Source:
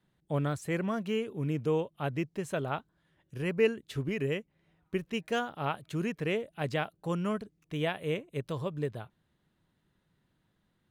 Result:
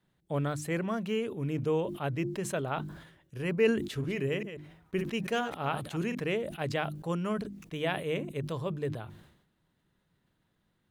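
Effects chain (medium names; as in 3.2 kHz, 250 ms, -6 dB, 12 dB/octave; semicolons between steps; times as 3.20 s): 3.73–6.15 s: chunks repeated in reverse 140 ms, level -11.5 dB; hum notches 50/100/150/200/250/300/350 Hz; decay stretcher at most 73 dB/s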